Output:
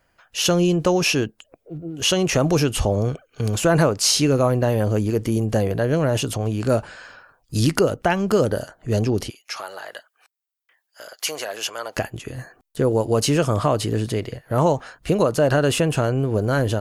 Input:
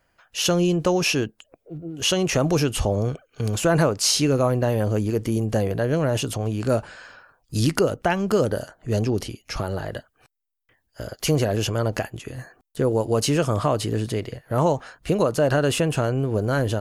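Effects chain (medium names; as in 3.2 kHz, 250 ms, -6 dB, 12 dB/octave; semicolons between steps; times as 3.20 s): 9.30–11.97 s: high-pass 880 Hz 12 dB/octave; trim +2 dB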